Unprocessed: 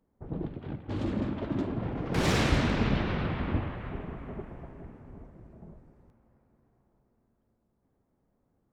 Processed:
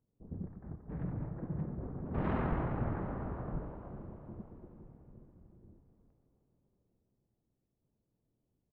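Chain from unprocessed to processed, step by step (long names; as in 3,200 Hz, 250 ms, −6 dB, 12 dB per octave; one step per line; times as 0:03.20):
bass and treble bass −7 dB, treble −12 dB
pitch shifter −11 semitones
high-frequency loss of the air 420 metres
on a send: delay with a high-pass on its return 154 ms, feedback 79%, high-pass 2,100 Hz, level −13.5 dB
on the sum: level −3 dB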